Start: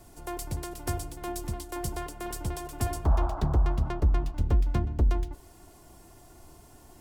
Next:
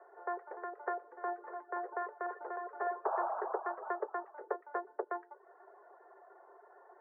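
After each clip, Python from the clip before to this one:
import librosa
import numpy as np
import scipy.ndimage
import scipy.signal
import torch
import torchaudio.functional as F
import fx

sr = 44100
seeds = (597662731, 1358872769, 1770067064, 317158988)

y = scipy.signal.sosfilt(scipy.signal.cheby1(5, 1.0, [390.0, 1800.0], 'bandpass', fs=sr, output='sos'), x)
y = fx.dereverb_blind(y, sr, rt60_s=0.52)
y = y * librosa.db_to_amplitude(2.5)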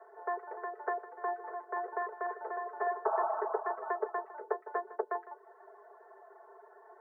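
y = x + 0.85 * np.pad(x, (int(4.6 * sr / 1000.0), 0))[:len(x)]
y = y + 10.0 ** (-15.5 / 20.0) * np.pad(y, (int(156 * sr / 1000.0), 0))[:len(y)]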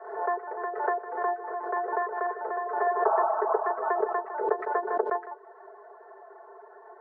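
y = fx.air_absorb(x, sr, metres=260.0)
y = fx.pre_swell(y, sr, db_per_s=70.0)
y = y * librosa.db_to_amplitude(7.5)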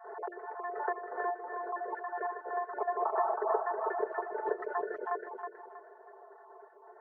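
y = fx.spec_dropout(x, sr, seeds[0], share_pct=35)
y = fx.echo_feedback(y, sr, ms=320, feedback_pct=32, wet_db=-6.0)
y = y * librosa.db_to_amplitude(-5.5)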